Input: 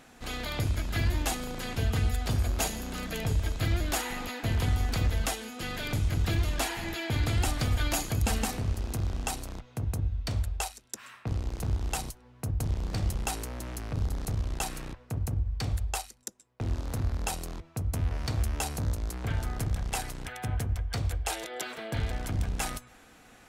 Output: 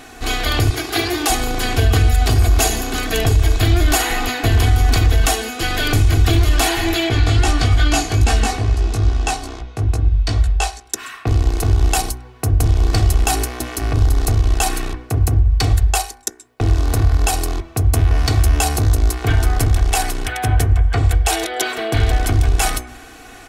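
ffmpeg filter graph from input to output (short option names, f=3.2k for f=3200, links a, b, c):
-filter_complex "[0:a]asettb=1/sr,asplit=3[a][b][c];[a]atrim=end=0.704[d];[b]atrim=start=0.7:end=1.3,asetpts=PTS-STARTPTS,afade=t=in:d=0.004:c=qsin,afade=t=out:st=0.596:d=0.004:c=qsin,highpass=270,aecho=1:1:2.5:0.44,atrim=end_sample=26460[e];[c]atrim=start=1.296[f];[d][e]acrossfade=d=0.004:c1=hsin:c2=qsin[g];[g][f]acrossfade=d=0.004:c1=qsin:c2=hsin,asettb=1/sr,asplit=3[h][i][j];[h]atrim=end=7.094[k];[i]atrim=start=7.09:end=10.86,asetpts=PTS-STARTPTS,afade=t=in:d=0.004:c=qsin,afade=t=out:st=3.766:d=0.004:c=qsin,lowpass=7.3k,flanger=delay=16.5:depth=2.8:speed=2.4[l];[j]atrim=start=10.856[m];[k][l]acrossfade=d=0.004:c1=hsin:c2=qsin[n];[n][m]acrossfade=d=0.004:c1=qsin:c2=hsin,asettb=1/sr,asplit=3[o][p][q];[o]atrim=end=20.714[r];[p]atrim=start=20.71:end=21.11,asetpts=PTS-STARTPTS,afade=t=in:d=0.004:c=qsin,afade=t=out:st=0.396:d=0.004:c=qsin,acrossover=split=2900[s][t];[t]acompressor=threshold=-58dB:ratio=4:attack=1:release=60[u];[s][u]amix=inputs=2:normalize=0,equalizer=f=7.7k:w=3.1:g=7.5[v];[q]atrim=start=21.106[w];[r][v]acrossfade=d=0.004:c1=hsin:c2=qsin[x];[x][w]acrossfade=d=0.004:c1=qsin:c2=hsin,aecho=1:1:2.7:0.69,bandreject=f=61.51:t=h:w=4,bandreject=f=123.02:t=h:w=4,bandreject=f=184.53:t=h:w=4,bandreject=f=246.04:t=h:w=4,bandreject=f=307.55:t=h:w=4,bandreject=f=369.06:t=h:w=4,bandreject=f=430.57:t=h:w=4,bandreject=f=492.08:t=h:w=4,bandreject=f=553.59:t=h:w=4,bandreject=f=615.1:t=h:w=4,bandreject=f=676.61:t=h:w=4,bandreject=f=738.12:t=h:w=4,bandreject=f=799.63:t=h:w=4,bandreject=f=861.14:t=h:w=4,bandreject=f=922.65:t=h:w=4,bandreject=f=984.16:t=h:w=4,bandreject=f=1.04567k:t=h:w=4,bandreject=f=1.10718k:t=h:w=4,bandreject=f=1.16869k:t=h:w=4,bandreject=f=1.2302k:t=h:w=4,bandreject=f=1.29171k:t=h:w=4,bandreject=f=1.35322k:t=h:w=4,bandreject=f=1.41473k:t=h:w=4,bandreject=f=1.47624k:t=h:w=4,bandreject=f=1.53775k:t=h:w=4,bandreject=f=1.59926k:t=h:w=4,bandreject=f=1.66077k:t=h:w=4,bandreject=f=1.72228k:t=h:w=4,bandreject=f=1.78379k:t=h:w=4,bandreject=f=1.8453k:t=h:w=4,bandreject=f=1.90681k:t=h:w=4,bandreject=f=1.96832k:t=h:w=4,bandreject=f=2.02983k:t=h:w=4,bandreject=f=2.09134k:t=h:w=4,bandreject=f=2.15285k:t=h:w=4,bandreject=f=2.21436k:t=h:w=4,bandreject=f=2.27587k:t=h:w=4,bandreject=f=2.33738k:t=h:w=4,bandreject=f=2.39889k:t=h:w=4,alimiter=level_in=19dB:limit=-1dB:release=50:level=0:latency=1,volume=-4.5dB"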